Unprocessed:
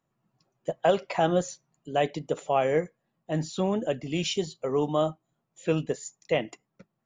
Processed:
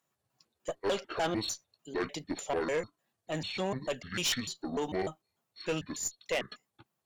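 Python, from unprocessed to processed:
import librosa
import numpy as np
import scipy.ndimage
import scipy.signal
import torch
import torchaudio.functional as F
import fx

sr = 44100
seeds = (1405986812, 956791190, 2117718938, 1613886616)

y = fx.pitch_trill(x, sr, semitones=-8.5, every_ms=149)
y = fx.tilt_eq(y, sr, slope=3.0)
y = fx.tube_stage(y, sr, drive_db=25.0, bias=0.35)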